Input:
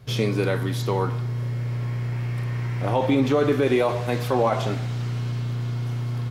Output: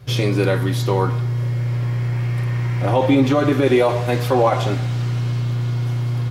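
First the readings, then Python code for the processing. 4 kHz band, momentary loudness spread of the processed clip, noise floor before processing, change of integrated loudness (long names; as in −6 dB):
+5.0 dB, 6 LU, −27 dBFS, +5.0 dB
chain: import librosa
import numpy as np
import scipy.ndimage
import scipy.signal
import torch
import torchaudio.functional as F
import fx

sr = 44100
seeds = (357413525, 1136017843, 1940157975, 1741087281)

y = fx.notch_comb(x, sr, f0_hz=220.0)
y = y * 10.0 ** (6.0 / 20.0)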